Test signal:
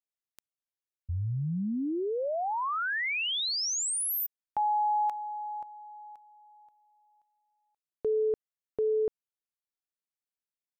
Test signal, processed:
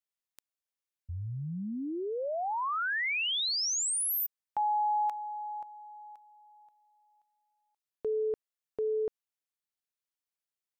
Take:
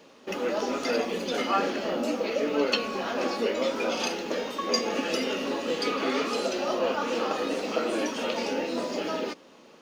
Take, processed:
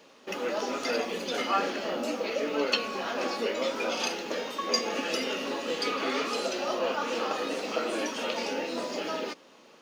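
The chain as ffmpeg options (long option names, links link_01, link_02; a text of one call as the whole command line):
ffmpeg -i in.wav -af "lowshelf=frequency=490:gain=-6" out.wav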